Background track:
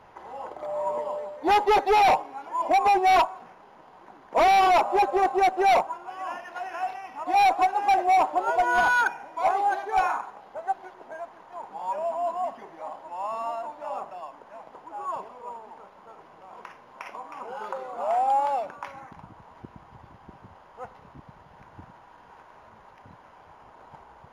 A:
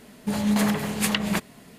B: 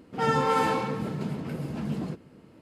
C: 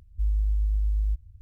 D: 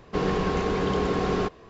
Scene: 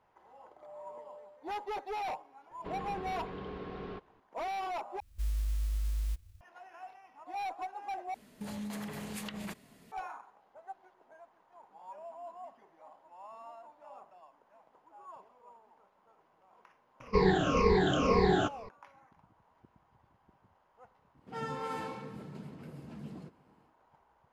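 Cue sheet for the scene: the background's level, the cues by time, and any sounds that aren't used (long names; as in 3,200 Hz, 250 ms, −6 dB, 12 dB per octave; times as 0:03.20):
background track −18 dB
0:02.51: mix in D −17.5 dB + low-pass filter 3,900 Hz 24 dB per octave
0:05.00: overwrite with C −8 dB + spectral envelope flattened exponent 0.6
0:08.14: overwrite with A −11 dB + downward compressor 5 to 1, threshold −26 dBFS
0:17.00: mix in D −6.5 dB + rippled gain that drifts along the octave scale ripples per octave 0.88, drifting −2 Hz, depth 23 dB
0:21.14: mix in B −14 dB, fades 0.10 s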